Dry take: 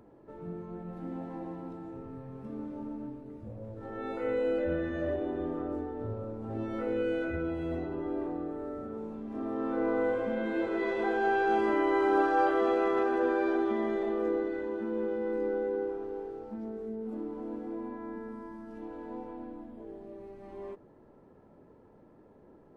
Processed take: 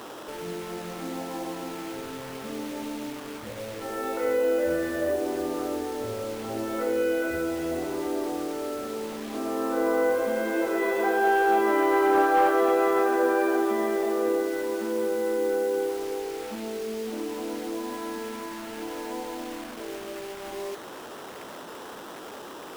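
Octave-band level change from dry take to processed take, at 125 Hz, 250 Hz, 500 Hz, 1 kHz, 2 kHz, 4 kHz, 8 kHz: -2.5 dB, +3.5 dB, +5.5 dB, +6.5 dB, +6.5 dB, +12.5 dB, n/a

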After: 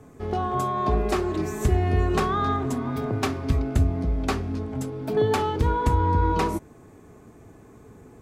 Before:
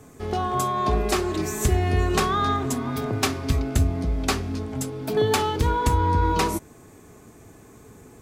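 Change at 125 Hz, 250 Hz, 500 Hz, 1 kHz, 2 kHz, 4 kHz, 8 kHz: 0.0, 0.0, -0.5, -1.5, -3.5, -7.5, -10.0 dB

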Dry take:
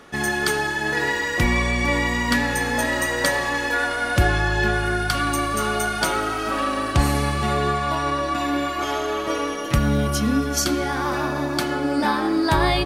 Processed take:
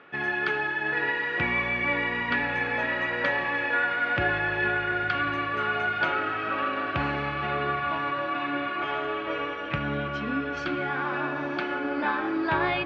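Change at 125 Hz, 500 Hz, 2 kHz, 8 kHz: -12.0 dB, -6.5 dB, -2.0 dB, under -30 dB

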